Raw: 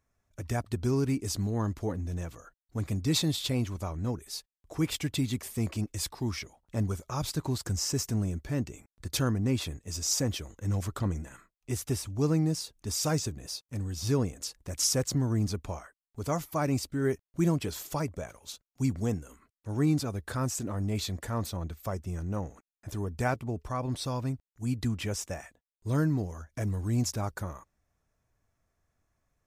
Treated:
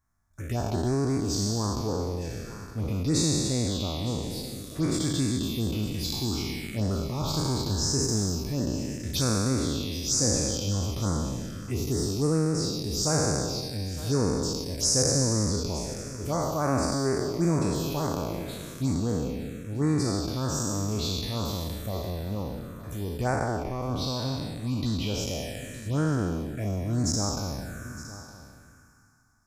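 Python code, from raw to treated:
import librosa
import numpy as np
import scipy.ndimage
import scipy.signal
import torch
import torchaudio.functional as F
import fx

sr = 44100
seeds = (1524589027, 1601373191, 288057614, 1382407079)

p1 = fx.spec_trails(x, sr, decay_s=2.68)
p2 = fx.env_phaser(p1, sr, low_hz=490.0, high_hz=3100.0, full_db=-21.5)
y = p2 + fx.echo_single(p2, sr, ms=913, db=-16.0, dry=0)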